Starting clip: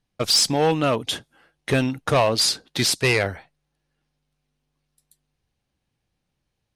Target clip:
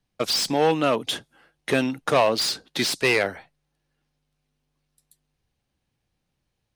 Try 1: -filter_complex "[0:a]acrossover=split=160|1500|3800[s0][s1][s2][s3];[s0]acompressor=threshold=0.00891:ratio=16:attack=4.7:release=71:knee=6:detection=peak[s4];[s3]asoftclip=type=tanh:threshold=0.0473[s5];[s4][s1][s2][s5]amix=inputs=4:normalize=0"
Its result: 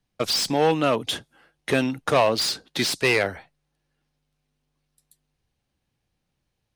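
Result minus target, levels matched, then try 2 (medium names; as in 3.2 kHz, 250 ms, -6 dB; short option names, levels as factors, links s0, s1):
compression: peak gain reduction -10.5 dB
-filter_complex "[0:a]acrossover=split=160|1500|3800[s0][s1][s2][s3];[s0]acompressor=threshold=0.00251:ratio=16:attack=4.7:release=71:knee=6:detection=peak[s4];[s3]asoftclip=type=tanh:threshold=0.0473[s5];[s4][s1][s2][s5]amix=inputs=4:normalize=0"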